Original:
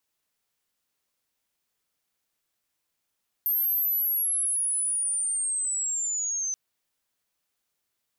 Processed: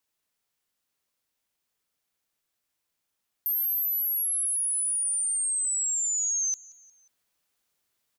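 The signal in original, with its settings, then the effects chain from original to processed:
chirp linear 13000 Hz -> 6100 Hz -22 dBFS -> -26.5 dBFS 3.08 s
vocal rider; feedback echo 0.179 s, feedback 52%, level -23 dB

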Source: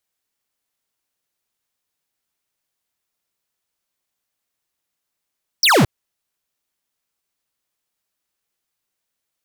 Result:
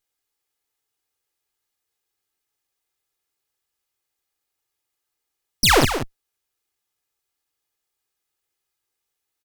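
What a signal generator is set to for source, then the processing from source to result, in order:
laser zap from 6000 Hz, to 100 Hz, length 0.22 s square, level -12.5 dB
minimum comb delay 2.4 ms; on a send: echo 0.18 s -9.5 dB

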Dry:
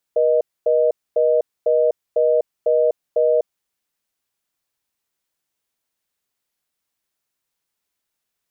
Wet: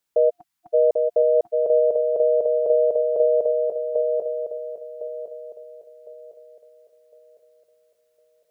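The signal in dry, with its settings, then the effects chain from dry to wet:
call progress tone reorder tone, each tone -16 dBFS 3.35 s
spectral delete 0.3–0.74, 340–710 Hz; on a send: swung echo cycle 1.057 s, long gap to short 3:1, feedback 31%, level -4 dB

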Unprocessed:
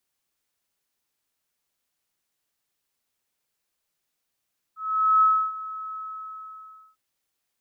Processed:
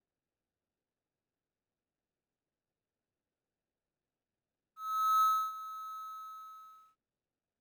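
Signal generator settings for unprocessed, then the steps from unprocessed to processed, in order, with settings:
ADSR sine 1290 Hz, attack 0.457 s, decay 0.301 s, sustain -17.5 dB, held 1.19 s, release 1.01 s -14 dBFS
median filter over 41 samples

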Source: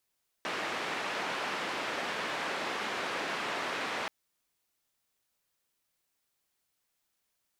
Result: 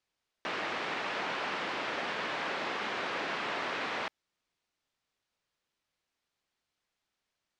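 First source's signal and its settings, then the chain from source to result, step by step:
noise band 260–2100 Hz, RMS -35 dBFS 3.63 s
LPF 4900 Hz 12 dB/oct

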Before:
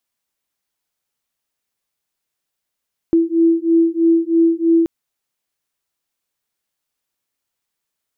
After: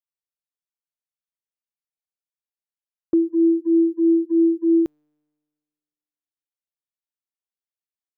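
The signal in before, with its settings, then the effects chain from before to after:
beating tones 330 Hz, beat 3.1 Hz, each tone -14.5 dBFS 1.73 s
gate -20 dBFS, range -19 dB; resonator 150 Hz, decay 1.8 s, mix 30%

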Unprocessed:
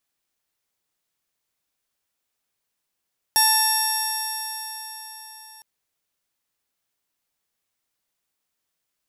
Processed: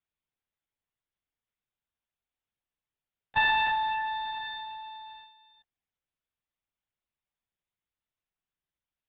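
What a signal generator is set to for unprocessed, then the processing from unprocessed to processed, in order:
stretched partials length 2.26 s, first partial 873 Hz, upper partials -6/-14/-10/-16.5/1.5/-17/-8/-7.5/1.5/-2.5/-17 dB, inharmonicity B 0.0035, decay 4.49 s, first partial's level -20.5 dB
gate -40 dBFS, range -10 dB; bell 170 Hz +8 dB 0.81 oct; LPC vocoder at 8 kHz whisper

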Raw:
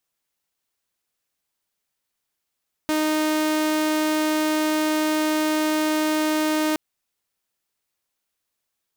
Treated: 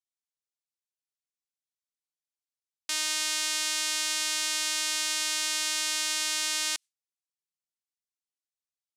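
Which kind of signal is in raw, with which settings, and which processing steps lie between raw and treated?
tone saw 309 Hz -17 dBFS 3.87 s
weighting filter ITU-R 468; gate with hold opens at -15 dBFS; passive tone stack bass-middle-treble 5-5-5

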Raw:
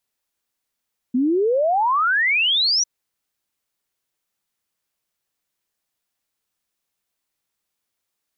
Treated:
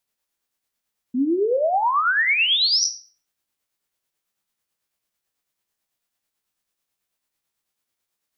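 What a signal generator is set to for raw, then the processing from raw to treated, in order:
log sweep 240 Hz -> 6000 Hz 1.70 s -15.5 dBFS
spectral trails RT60 0.32 s; tremolo 9.1 Hz, depth 45%; Schroeder reverb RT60 0.36 s, combs from 29 ms, DRR 12 dB

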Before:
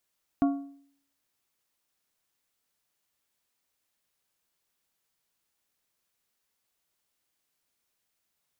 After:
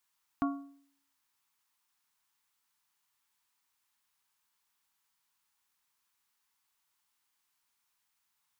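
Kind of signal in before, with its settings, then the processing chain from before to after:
metal hit plate, lowest mode 279 Hz, modes 4, decay 0.60 s, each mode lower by 8.5 dB, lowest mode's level -18 dB
resonant low shelf 760 Hz -6 dB, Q 3

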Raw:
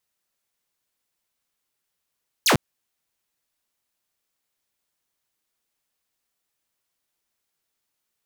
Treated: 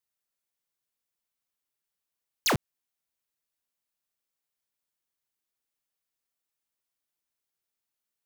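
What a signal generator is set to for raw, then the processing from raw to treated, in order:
laser zap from 7400 Hz, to 89 Hz, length 0.10 s saw, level -12 dB
high shelf 11000 Hz +4 dB; limiter -22 dBFS; sample leveller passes 5

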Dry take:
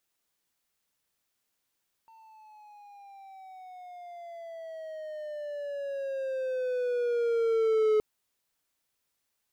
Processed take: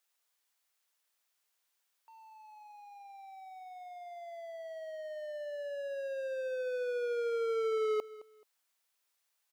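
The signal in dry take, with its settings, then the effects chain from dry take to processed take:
gliding synth tone triangle, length 5.92 s, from 904 Hz, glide -13 st, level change +32 dB, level -18.5 dB
HPF 620 Hz 12 dB/oct; feedback echo 0.215 s, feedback 24%, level -18 dB

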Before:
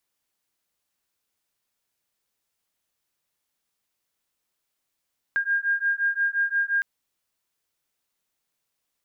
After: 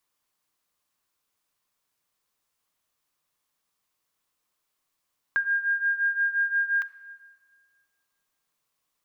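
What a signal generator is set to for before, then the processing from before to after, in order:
beating tones 1610 Hz, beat 5.7 Hz, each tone -24.5 dBFS 1.46 s
bell 1100 Hz +7.5 dB 0.37 oct; shoebox room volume 3100 m³, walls mixed, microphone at 0.47 m

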